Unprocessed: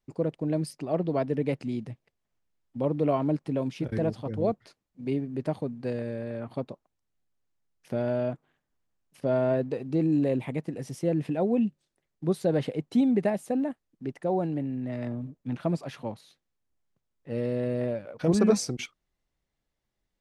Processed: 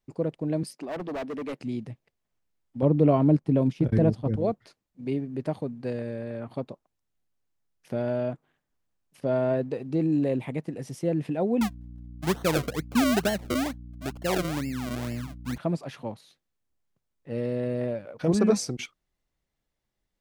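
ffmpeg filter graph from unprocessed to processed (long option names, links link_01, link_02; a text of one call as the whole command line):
ffmpeg -i in.wav -filter_complex "[0:a]asettb=1/sr,asplit=3[link_01][link_02][link_03];[link_01]atrim=end=0.634[link_04];[link_02]atrim=start=0.63:end=1.6,asetpts=PTS-STARTPTS,afade=type=in:duration=0.004:curve=qsin,afade=type=out:start_time=0.966:duration=0.004:curve=qsin,highpass=frequency=200:width=0.5412,highpass=frequency=200:width=1.3066,asoftclip=type=hard:threshold=-30dB[link_05];[link_03]atrim=start=1.596[link_06];[link_04][link_05]acrossfade=duration=0.004:curve1=hsin:curve2=qsin[link_07];[link_07][link_06]acrossfade=duration=0.004:curve1=qsin:curve2=hsin,asettb=1/sr,asplit=3[link_08][link_09][link_10];[link_08]atrim=end=2.824[link_11];[link_09]atrim=start=2.82:end=4.36,asetpts=PTS-STARTPTS,afade=type=in:duration=0.004:curve=qsin,afade=type=out:start_time=1.536:duration=0.004:curve=qsin,lowshelf=frequency=390:gain=10,agate=range=-7dB:threshold=-31dB:ratio=16:release=100:detection=peak[link_12];[link_10]atrim=start=4.356[link_13];[link_11][link_12]acrossfade=duration=0.004:curve1=hsin:curve2=qsin[link_14];[link_14][link_13]acrossfade=duration=0.004:curve1=qsin:curve2=hsin,asettb=1/sr,asplit=3[link_15][link_16][link_17];[link_15]atrim=end=11.614[link_18];[link_16]atrim=start=11.61:end=15.58,asetpts=PTS-STARTPTS,afade=type=in:duration=0.004:curve=qsin,afade=type=out:start_time=3.966:duration=0.004:curve=qsin,acrusher=samples=35:mix=1:aa=0.000001:lfo=1:lforange=35:lforate=2.2,aeval=exprs='val(0)+0.00891*(sin(2*PI*60*n/s)+sin(2*PI*2*60*n/s)/2+sin(2*PI*3*60*n/s)/3+sin(2*PI*4*60*n/s)/4+sin(2*PI*5*60*n/s)/5)':channel_layout=same[link_19];[link_17]atrim=start=15.576[link_20];[link_18][link_19]acrossfade=duration=0.004:curve1=hsin:curve2=qsin[link_21];[link_21][link_20]acrossfade=duration=0.004:curve1=qsin:curve2=hsin" out.wav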